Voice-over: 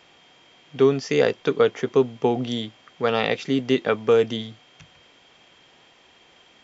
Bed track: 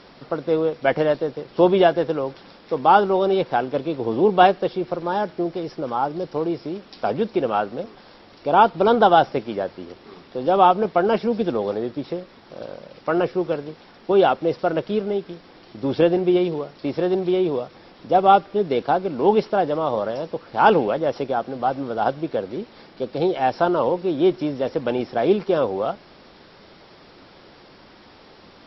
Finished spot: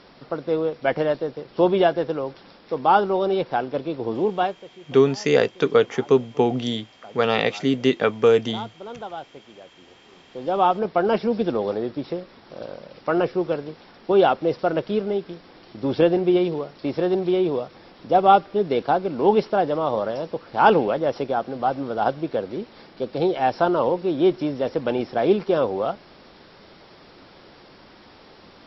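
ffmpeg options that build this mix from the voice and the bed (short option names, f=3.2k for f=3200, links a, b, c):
-filter_complex "[0:a]adelay=4150,volume=1.5dB[a];[1:a]volume=17dB,afade=t=out:st=4.09:d=0.56:silence=0.133352,afade=t=in:st=9.74:d=1.47:silence=0.105925[b];[a][b]amix=inputs=2:normalize=0"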